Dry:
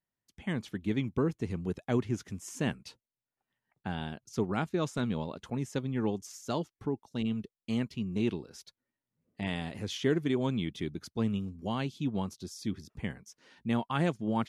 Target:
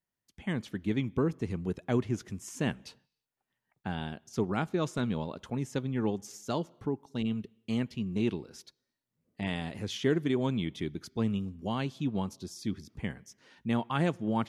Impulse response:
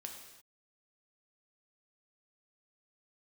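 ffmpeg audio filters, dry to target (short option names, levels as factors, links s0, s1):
-filter_complex "[0:a]asplit=2[s0][s1];[1:a]atrim=start_sample=2205,lowpass=4400[s2];[s1][s2]afir=irnorm=-1:irlink=0,volume=0.141[s3];[s0][s3]amix=inputs=2:normalize=0"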